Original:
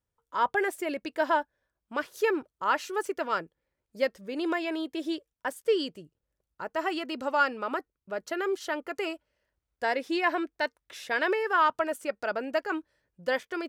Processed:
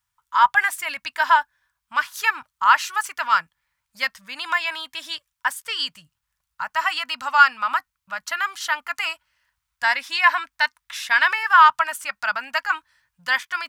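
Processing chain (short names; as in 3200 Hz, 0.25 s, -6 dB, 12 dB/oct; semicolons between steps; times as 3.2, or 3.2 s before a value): EQ curve 130 Hz 0 dB, 260 Hz -11 dB, 380 Hz -29 dB, 980 Hz +12 dB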